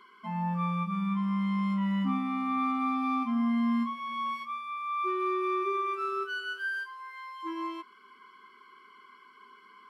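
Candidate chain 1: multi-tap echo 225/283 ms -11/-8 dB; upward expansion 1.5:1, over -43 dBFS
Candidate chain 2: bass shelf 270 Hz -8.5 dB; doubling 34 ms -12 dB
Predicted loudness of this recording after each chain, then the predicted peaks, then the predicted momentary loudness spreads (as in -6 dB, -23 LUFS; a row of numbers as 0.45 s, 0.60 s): -31.5 LUFS, -32.0 LUFS; -18.0 dBFS, -21.5 dBFS; 14 LU, 11 LU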